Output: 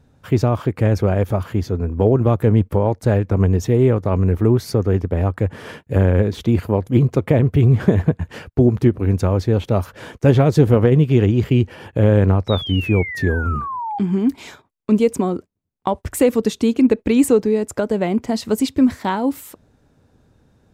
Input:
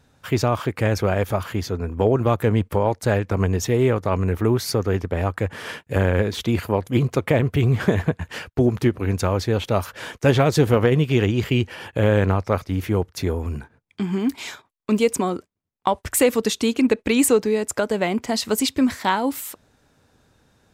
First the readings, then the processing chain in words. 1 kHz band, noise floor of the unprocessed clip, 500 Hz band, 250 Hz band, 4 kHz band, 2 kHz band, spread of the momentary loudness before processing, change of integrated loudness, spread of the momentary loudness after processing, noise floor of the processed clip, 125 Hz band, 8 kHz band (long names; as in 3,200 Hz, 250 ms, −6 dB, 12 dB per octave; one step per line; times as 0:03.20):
−0.5 dB, −63 dBFS, +2.5 dB, +4.5 dB, −3.0 dB, −2.0 dB, 9 LU, +3.5 dB, 9 LU, −59 dBFS, +5.5 dB, can't be measured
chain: sound drawn into the spectrogram fall, 0:12.48–0:13.99, 790–3,900 Hz −24 dBFS
tilt shelving filter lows +6 dB, about 720 Hz